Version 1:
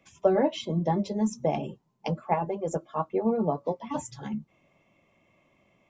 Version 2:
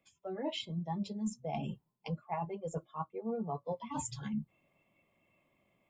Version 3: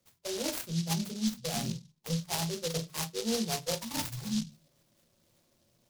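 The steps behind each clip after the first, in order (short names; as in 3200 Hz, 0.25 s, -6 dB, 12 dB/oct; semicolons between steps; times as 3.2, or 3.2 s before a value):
reverse; compressor 12:1, threshold -35 dBFS, peak gain reduction 19 dB; reverse; spectral noise reduction 11 dB; notch 5900 Hz, Q 5.4; gain +2.5 dB
reverb RT60 0.20 s, pre-delay 6 ms, DRR 3 dB; noise-modulated delay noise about 4600 Hz, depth 0.22 ms; gain +1 dB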